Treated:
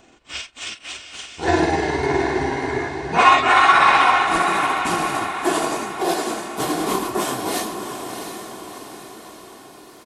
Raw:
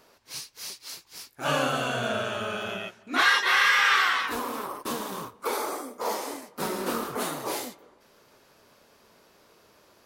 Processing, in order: pitch bend over the whole clip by -10.5 st ending unshifted; comb 2.8 ms, depth 42%; echo that smears into a reverb 690 ms, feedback 52%, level -7 dB; trim +7.5 dB

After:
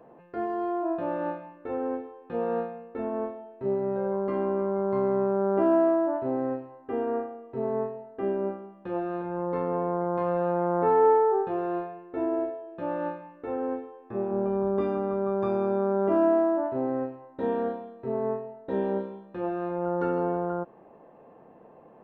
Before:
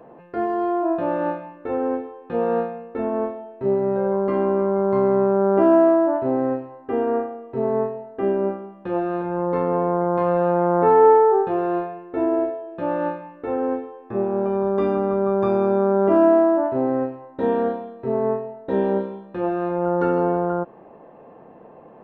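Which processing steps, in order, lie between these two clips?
14.31–14.81 s: tilt EQ -1.5 dB/octave; trim -7 dB

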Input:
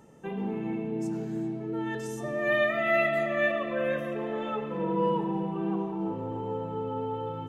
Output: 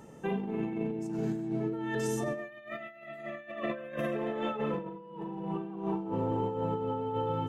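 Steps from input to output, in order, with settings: compressor with a negative ratio -34 dBFS, ratio -0.5

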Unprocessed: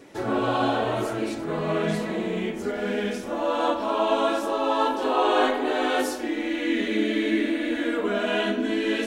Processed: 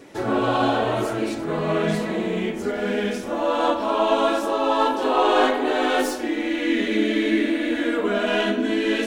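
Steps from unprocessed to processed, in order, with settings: tracing distortion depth 0.022 ms; trim +3 dB

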